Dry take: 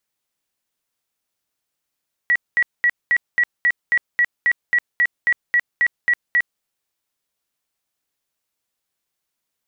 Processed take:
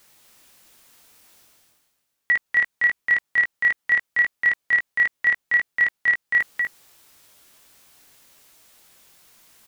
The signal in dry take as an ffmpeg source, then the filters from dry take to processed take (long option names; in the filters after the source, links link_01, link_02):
-f lavfi -i "aevalsrc='0.237*sin(2*PI*1930*mod(t,0.27))*lt(mod(t,0.27),108/1930)':duration=4.32:sample_rate=44100"
-filter_complex "[0:a]areverse,acompressor=mode=upward:threshold=-37dB:ratio=2.5,areverse,asplit=2[link_01][link_02];[link_02]adelay=19,volume=-8dB[link_03];[link_01][link_03]amix=inputs=2:normalize=0,aecho=1:1:244:0.596"